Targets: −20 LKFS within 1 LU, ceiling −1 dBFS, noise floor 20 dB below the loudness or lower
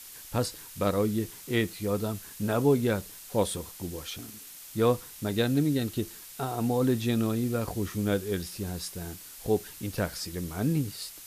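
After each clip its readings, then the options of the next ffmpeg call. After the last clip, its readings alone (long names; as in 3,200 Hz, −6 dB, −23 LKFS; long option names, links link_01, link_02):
background noise floor −47 dBFS; target noise floor −50 dBFS; integrated loudness −30.0 LKFS; sample peak −12.5 dBFS; target loudness −20.0 LKFS
→ -af "afftdn=noise_reduction=6:noise_floor=-47"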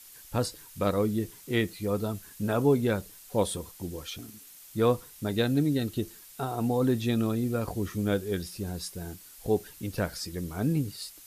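background noise floor −51 dBFS; integrated loudness −30.0 LKFS; sample peak −12.5 dBFS; target loudness −20.0 LKFS
→ -af "volume=10dB"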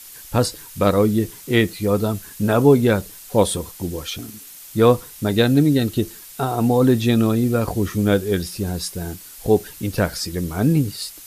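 integrated loudness −20.0 LKFS; sample peak −2.5 dBFS; background noise floor −41 dBFS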